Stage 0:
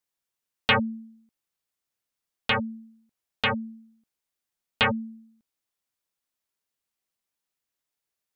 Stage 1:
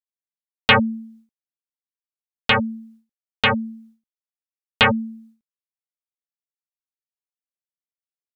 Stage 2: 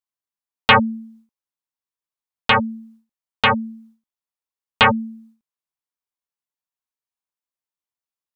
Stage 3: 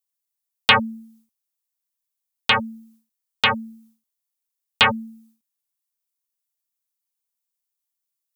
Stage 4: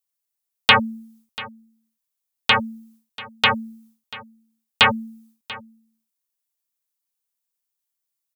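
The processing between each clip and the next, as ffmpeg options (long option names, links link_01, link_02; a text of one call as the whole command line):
ffmpeg -i in.wav -af "agate=range=-33dB:threshold=-52dB:ratio=3:detection=peak,volume=7dB" out.wav
ffmpeg -i in.wav -af "equalizer=frequency=1000:width=2.2:gain=7.5" out.wav
ffmpeg -i in.wav -af "crystalizer=i=4.5:c=0,volume=-6.5dB" out.wav
ffmpeg -i in.wav -af "aecho=1:1:689:0.112,volume=1dB" out.wav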